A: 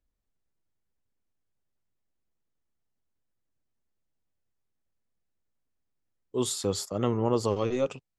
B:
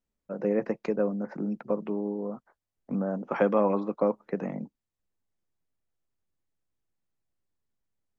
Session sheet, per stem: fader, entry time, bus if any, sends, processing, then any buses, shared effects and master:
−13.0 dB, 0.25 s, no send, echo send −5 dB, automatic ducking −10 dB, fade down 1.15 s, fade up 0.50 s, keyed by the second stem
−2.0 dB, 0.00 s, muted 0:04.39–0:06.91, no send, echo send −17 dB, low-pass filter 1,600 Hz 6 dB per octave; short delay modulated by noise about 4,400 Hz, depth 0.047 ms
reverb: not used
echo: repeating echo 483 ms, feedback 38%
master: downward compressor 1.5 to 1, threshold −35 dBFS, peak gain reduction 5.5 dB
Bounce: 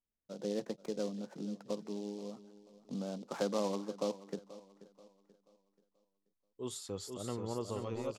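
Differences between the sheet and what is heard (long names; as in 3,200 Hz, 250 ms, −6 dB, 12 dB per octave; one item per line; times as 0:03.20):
stem B −2.0 dB → −10.0 dB
master: missing downward compressor 1.5 to 1, threshold −35 dBFS, peak gain reduction 5.5 dB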